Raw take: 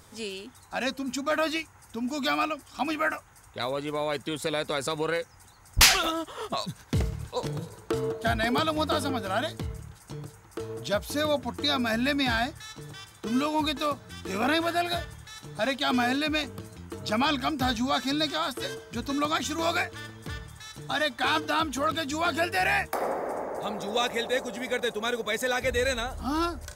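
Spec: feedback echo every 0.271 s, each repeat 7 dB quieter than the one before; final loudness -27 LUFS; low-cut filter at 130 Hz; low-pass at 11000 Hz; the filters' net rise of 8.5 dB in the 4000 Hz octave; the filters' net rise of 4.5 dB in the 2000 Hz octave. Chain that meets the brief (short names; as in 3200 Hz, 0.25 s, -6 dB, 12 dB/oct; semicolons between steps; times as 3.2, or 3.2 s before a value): HPF 130 Hz; LPF 11000 Hz; bell 2000 Hz +3.5 dB; bell 4000 Hz +9 dB; feedback echo 0.271 s, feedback 45%, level -7 dB; gain -4 dB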